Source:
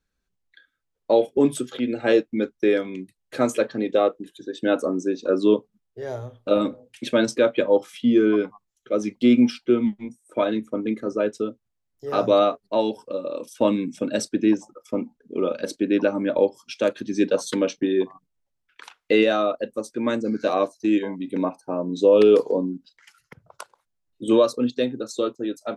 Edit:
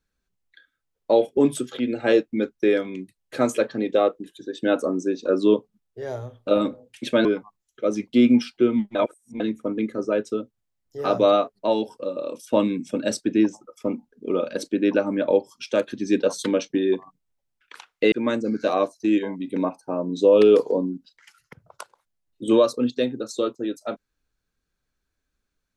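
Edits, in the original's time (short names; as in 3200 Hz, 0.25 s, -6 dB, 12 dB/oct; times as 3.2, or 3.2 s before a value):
7.25–8.33 cut
10.03–10.48 reverse
19.2–19.92 cut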